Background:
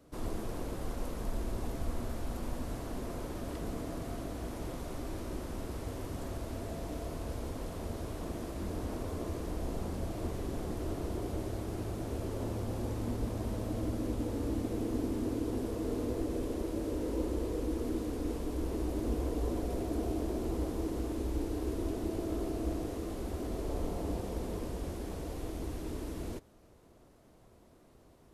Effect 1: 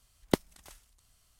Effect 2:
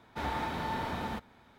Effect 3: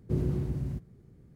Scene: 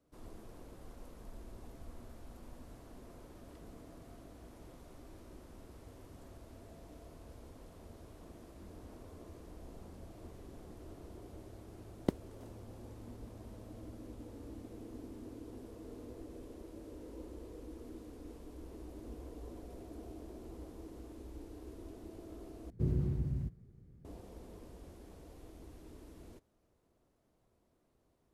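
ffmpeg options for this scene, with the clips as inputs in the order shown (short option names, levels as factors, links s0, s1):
-filter_complex "[0:a]volume=0.188[s0];[1:a]tiltshelf=f=840:g=7[s1];[3:a]lowshelf=f=150:g=8[s2];[s0]asplit=2[s3][s4];[s3]atrim=end=22.704[s5];[s2]atrim=end=1.35,asetpts=PTS-STARTPTS,volume=0.398[s6];[s4]atrim=start=24.046[s7];[s1]atrim=end=1.39,asetpts=PTS-STARTPTS,volume=0.282,afade=t=in:d=0.004:c=hsin,afade=t=out:st=1.386:d=0.004:c=hsin,adelay=11750[s8];[s5][s6]acrossfade=d=0.004:c1=hsin:c2=hsin[s9];[s9][s7]acrossfade=d=0.004:c1=hsin:c2=hsin[s10];[s10][s8]amix=inputs=2:normalize=0"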